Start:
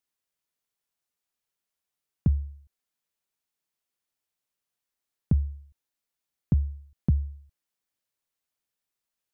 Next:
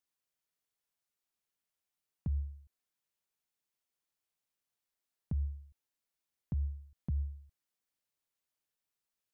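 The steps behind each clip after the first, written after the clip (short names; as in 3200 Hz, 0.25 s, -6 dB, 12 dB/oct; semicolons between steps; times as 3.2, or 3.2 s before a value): limiter -25 dBFS, peak gain reduction 11 dB; gain -3.5 dB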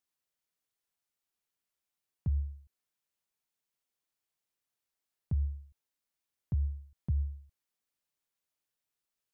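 dynamic EQ 100 Hz, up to +7 dB, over -49 dBFS, Q 1.6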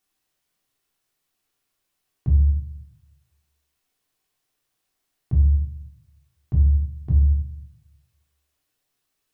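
in parallel at -2 dB: limiter -34.5 dBFS, peak gain reduction 11.5 dB; on the sum: reverb RT60 0.70 s, pre-delay 3 ms, DRR -4 dB; gain +1.5 dB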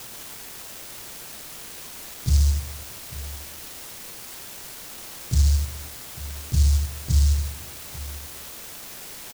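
requantised 6-bit, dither triangular; echo 0.845 s -18 dB; noise-modulated delay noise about 5700 Hz, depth 0.23 ms; gain -1.5 dB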